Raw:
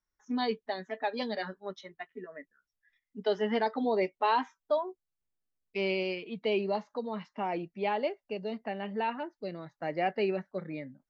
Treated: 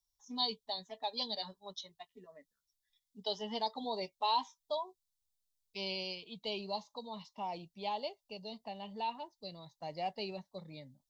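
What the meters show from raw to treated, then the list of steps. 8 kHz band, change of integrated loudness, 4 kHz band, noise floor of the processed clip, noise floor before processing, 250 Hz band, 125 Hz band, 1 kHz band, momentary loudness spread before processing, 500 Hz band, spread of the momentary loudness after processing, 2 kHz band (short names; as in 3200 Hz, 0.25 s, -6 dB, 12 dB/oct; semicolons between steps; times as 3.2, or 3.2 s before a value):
n/a, -6.5 dB, +3.5 dB, under -85 dBFS, under -85 dBFS, -11.5 dB, -8.5 dB, -5.0 dB, 13 LU, -11.0 dB, 14 LU, -12.5 dB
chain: EQ curve 100 Hz 0 dB, 340 Hz -15 dB, 1000 Hz -2 dB, 1500 Hz -24 dB, 2400 Hz -10 dB, 3600 Hz +8 dB; gain -1 dB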